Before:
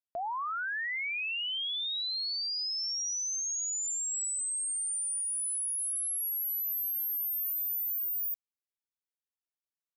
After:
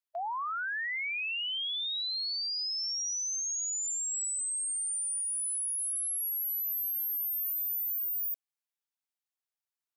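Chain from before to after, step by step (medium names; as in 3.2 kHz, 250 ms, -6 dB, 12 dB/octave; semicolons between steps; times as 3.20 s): brick-wall FIR high-pass 630 Hz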